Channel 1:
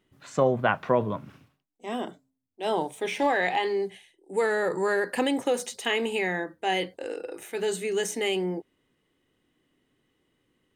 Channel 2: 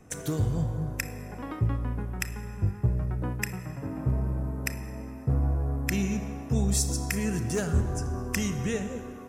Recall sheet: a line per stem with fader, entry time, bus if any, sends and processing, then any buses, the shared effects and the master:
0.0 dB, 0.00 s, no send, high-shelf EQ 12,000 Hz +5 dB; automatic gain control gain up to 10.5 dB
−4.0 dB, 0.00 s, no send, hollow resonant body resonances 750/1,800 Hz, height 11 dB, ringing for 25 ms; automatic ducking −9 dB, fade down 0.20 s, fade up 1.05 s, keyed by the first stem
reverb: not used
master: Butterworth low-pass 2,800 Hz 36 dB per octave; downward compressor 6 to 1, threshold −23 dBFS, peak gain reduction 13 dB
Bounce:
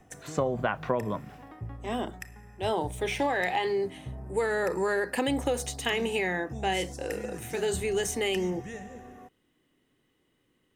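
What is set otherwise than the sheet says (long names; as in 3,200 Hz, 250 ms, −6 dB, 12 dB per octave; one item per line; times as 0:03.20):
stem 1: missing automatic gain control gain up to 10.5 dB
master: missing Butterworth low-pass 2,800 Hz 36 dB per octave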